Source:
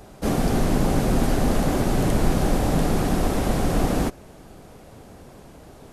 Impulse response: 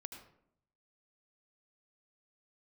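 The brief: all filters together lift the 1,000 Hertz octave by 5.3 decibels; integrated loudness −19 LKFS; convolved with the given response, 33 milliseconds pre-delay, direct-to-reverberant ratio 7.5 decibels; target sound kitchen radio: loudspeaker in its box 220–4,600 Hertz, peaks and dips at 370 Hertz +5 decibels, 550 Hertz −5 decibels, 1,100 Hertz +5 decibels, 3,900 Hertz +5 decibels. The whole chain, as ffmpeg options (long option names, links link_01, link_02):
-filter_complex "[0:a]equalizer=frequency=1000:width_type=o:gain=5.5,asplit=2[link_01][link_02];[1:a]atrim=start_sample=2205,adelay=33[link_03];[link_02][link_03]afir=irnorm=-1:irlink=0,volume=-3.5dB[link_04];[link_01][link_04]amix=inputs=2:normalize=0,highpass=220,equalizer=frequency=370:width_type=q:width=4:gain=5,equalizer=frequency=550:width_type=q:width=4:gain=-5,equalizer=frequency=1100:width_type=q:width=4:gain=5,equalizer=frequency=3900:width_type=q:width=4:gain=5,lowpass=frequency=4600:width=0.5412,lowpass=frequency=4600:width=1.3066,volume=4dB"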